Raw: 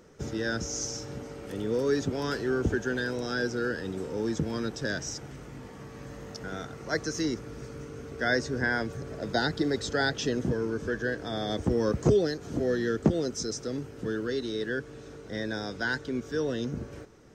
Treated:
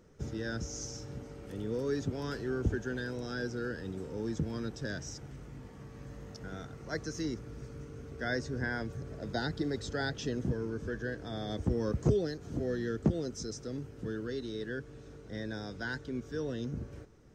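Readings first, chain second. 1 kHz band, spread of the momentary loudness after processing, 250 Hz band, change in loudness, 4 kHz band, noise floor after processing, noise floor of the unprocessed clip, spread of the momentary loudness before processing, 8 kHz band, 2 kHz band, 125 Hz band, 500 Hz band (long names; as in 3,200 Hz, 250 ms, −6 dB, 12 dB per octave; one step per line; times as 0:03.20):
−8.0 dB, 14 LU, −5.5 dB, −6.0 dB, −8.5 dB, −50 dBFS, −45 dBFS, 14 LU, −8.5 dB, −8.5 dB, −2.0 dB, −7.0 dB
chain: low-shelf EQ 170 Hz +10 dB
level −8.5 dB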